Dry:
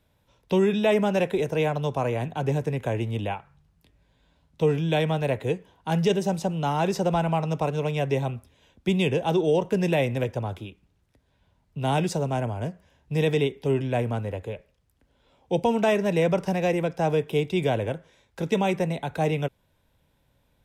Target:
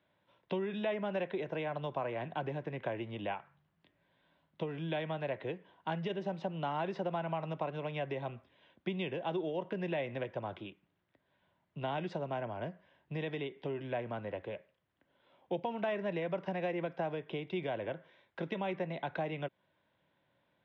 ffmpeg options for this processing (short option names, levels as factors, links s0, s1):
-af "acompressor=threshold=0.0447:ratio=6,highpass=250,equalizer=f=250:t=q:w=4:g=-7,equalizer=f=450:t=q:w=4:g=-9,equalizer=f=820:t=q:w=4:g=-5,equalizer=f=1300:t=q:w=4:g=-3,equalizer=f=2500:t=q:w=4:g=-5,lowpass=f=3100:w=0.5412,lowpass=f=3100:w=1.3066"